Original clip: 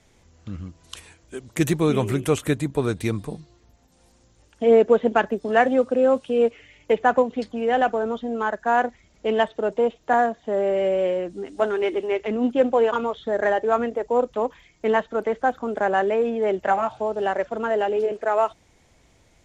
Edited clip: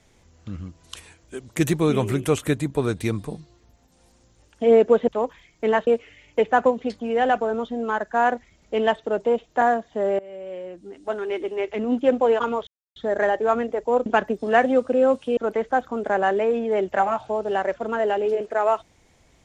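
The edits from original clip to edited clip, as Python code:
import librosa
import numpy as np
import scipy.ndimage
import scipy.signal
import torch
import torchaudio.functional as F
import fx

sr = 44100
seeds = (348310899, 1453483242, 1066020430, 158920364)

y = fx.edit(x, sr, fx.swap(start_s=5.08, length_s=1.31, other_s=14.29, other_length_s=0.79),
    fx.fade_in_from(start_s=10.71, length_s=1.87, floor_db=-21.5),
    fx.insert_silence(at_s=13.19, length_s=0.29), tone=tone)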